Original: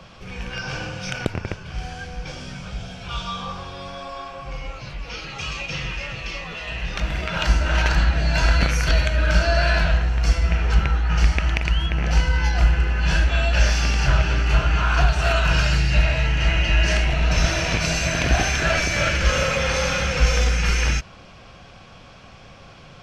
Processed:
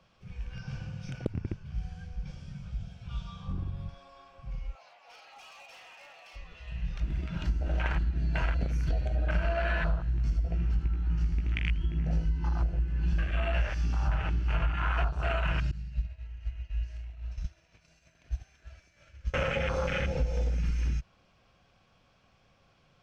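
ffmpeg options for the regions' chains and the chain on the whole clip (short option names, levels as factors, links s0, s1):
-filter_complex "[0:a]asettb=1/sr,asplit=3[s0][s1][s2];[s0]atrim=end=3.484[s3];[s1]atrim=start=3.48:end=3.89,asetpts=PTS-STARTPTS,afade=t=in:d=0.004:c=qsin,afade=t=out:st=0.406:d=0.004:c=qsin,lowshelf=f=190:g=10,adynamicsmooth=sensitivity=7:basefreq=2800[s4];[s2]atrim=start=3.886[s5];[s3][s4]acrossfade=d=0.004:c1=hsin:c2=qsin[s6];[s6][s5]acrossfade=d=0.004:c1=qsin:c2=hsin,asettb=1/sr,asplit=3[s7][s8][s9];[s7]atrim=end=4.754[s10];[s8]atrim=start=4.75:end=6.36,asetpts=PTS-STARTPTS,afade=t=in:d=0.004:c=qsin,afade=t=out:st=1.606:d=0.004:c=qsin,highpass=f=730:t=q:w=4.9,volume=22.4,asoftclip=hard,volume=0.0447[s11];[s9]atrim=start=6.356[s12];[s10][s11]acrossfade=d=0.004:c1=hsin:c2=qsin[s13];[s13][s12]acrossfade=d=0.004:c1=qsin:c2=hsin,asettb=1/sr,asplit=3[s14][s15][s16];[s14]atrim=end=9.344[s17];[s15]atrim=start=9.34:end=15.09,asetpts=PTS-STARTPTS,afade=t=in:d=0.004:c=qsin,afade=t=out:st=5.746:d=0.004:c=qsin,asplit=2[s18][s19];[s19]adelay=18,volume=0.562[s20];[s18][s20]amix=inputs=2:normalize=0,atrim=end_sample=253575,aecho=1:1:80:0.631,atrim=end_sample=253575[s21];[s16]atrim=start=15.086[s22];[s17][s21]acrossfade=d=0.004:c1=hsin:c2=qsin[s23];[s23][s22]acrossfade=d=0.004:c1=qsin:c2=hsin,asettb=1/sr,asplit=3[s24][s25][s26];[s24]atrim=end=15.714[s27];[s25]atrim=start=15.71:end=19.34,asetpts=PTS-STARTPTS,afade=t=in:d=0.004:c=qsin,afade=t=out:st=3.626:d=0.004:c=qsin,agate=range=0.0224:threshold=0.355:ratio=3:release=100:detection=peak,acrossover=split=140|3000[s28][s29][s30];[s29]acompressor=threshold=0.0141:ratio=6:attack=3.2:release=140:knee=2.83:detection=peak[s31];[s28][s31][s30]amix=inputs=3:normalize=0[s32];[s26]atrim=start=19.336[s33];[s27][s32]acrossfade=d=0.004:c1=hsin:c2=qsin[s34];[s34][s33]acrossfade=d=0.004:c1=qsin:c2=hsin,afwtdn=0.0891,acompressor=threshold=0.0891:ratio=6,volume=0.631"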